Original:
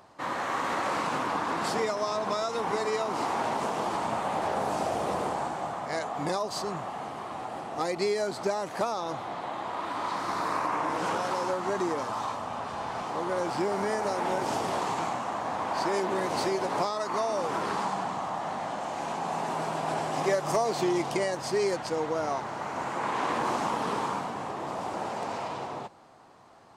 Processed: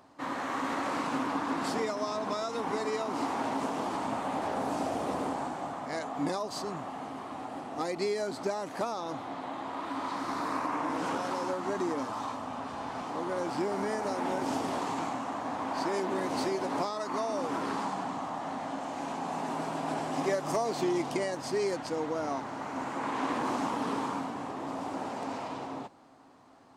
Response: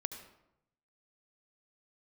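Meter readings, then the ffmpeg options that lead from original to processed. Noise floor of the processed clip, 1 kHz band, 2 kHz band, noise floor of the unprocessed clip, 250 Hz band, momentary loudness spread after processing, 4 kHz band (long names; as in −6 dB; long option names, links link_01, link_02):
−41 dBFS, −4.0 dB, −4.0 dB, −38 dBFS, +1.5 dB, 6 LU, −4.0 dB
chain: -af "equalizer=frequency=270:width=5.5:gain=13.5,volume=-4dB"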